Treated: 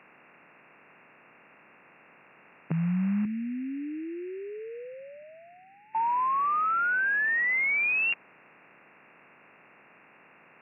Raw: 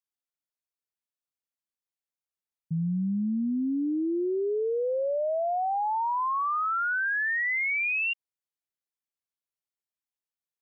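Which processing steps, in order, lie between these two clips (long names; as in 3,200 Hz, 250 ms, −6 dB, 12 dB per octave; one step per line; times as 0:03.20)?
compressor on every frequency bin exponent 0.4
0:03.25–0:05.95: drawn EQ curve 130 Hz 0 dB, 480 Hz −9 dB, 1,000 Hz −26 dB, 1,800 Hz −3 dB
expander for the loud parts 1.5 to 1, over −45 dBFS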